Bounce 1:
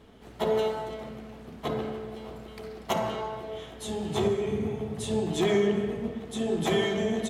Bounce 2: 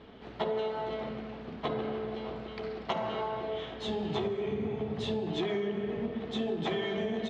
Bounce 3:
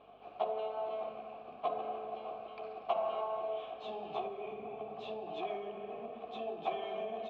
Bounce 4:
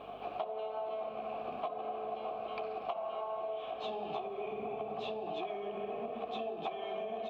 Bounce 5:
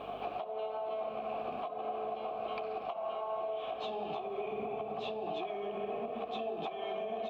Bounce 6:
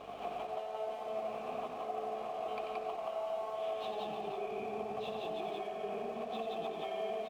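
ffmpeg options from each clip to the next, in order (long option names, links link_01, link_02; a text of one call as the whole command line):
ffmpeg -i in.wav -af "lowpass=frequency=4400:width=0.5412,lowpass=frequency=4400:width=1.3066,lowshelf=frequency=110:gain=-7.5,acompressor=threshold=-33dB:ratio=6,volume=3.5dB" out.wav
ffmpeg -i in.wav -filter_complex "[0:a]aeval=exprs='val(0)+0.00447*(sin(2*PI*50*n/s)+sin(2*PI*2*50*n/s)/2+sin(2*PI*3*50*n/s)/3+sin(2*PI*4*50*n/s)/4+sin(2*PI*5*50*n/s)/5)':channel_layout=same,asplit=3[link_01][link_02][link_03];[link_01]bandpass=frequency=730:width_type=q:width=8,volume=0dB[link_04];[link_02]bandpass=frequency=1090:width_type=q:width=8,volume=-6dB[link_05];[link_03]bandpass=frequency=2440:width_type=q:width=8,volume=-9dB[link_06];[link_04][link_05][link_06]amix=inputs=3:normalize=0,equalizer=frequency=1400:width=5.4:gain=-3,volume=6.5dB" out.wav
ffmpeg -i in.wav -af "acompressor=threshold=-47dB:ratio=10,volume=11.5dB" out.wav
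ffmpeg -i in.wav -af "alimiter=level_in=9dB:limit=-24dB:level=0:latency=1:release=300,volume=-9dB,volume=4.5dB" out.wav
ffmpeg -i in.wav -filter_complex "[0:a]aeval=exprs='sgn(val(0))*max(abs(val(0))-0.00158,0)':channel_layout=same,asplit=2[link_01][link_02];[link_02]aecho=0:1:90.38|174.9:0.447|0.891[link_03];[link_01][link_03]amix=inputs=2:normalize=0,volume=-3.5dB" out.wav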